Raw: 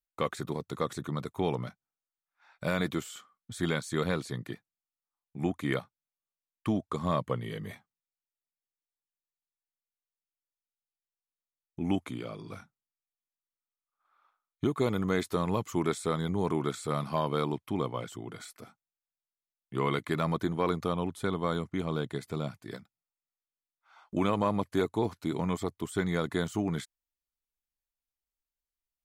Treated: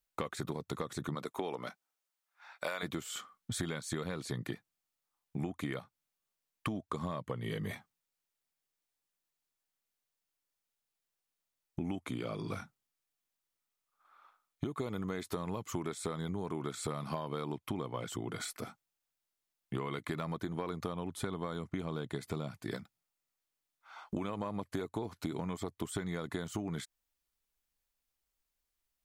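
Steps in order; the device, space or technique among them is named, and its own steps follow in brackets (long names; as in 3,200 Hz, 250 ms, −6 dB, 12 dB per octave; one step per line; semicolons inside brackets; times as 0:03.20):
0:01.14–0:02.82: high-pass filter 250 Hz → 620 Hz 12 dB per octave
serial compression, leveller first (downward compressor 2.5 to 1, threshold −32 dBFS, peak gain reduction 7 dB; downward compressor 6 to 1, threshold −41 dBFS, peak gain reduction 12 dB)
level +7 dB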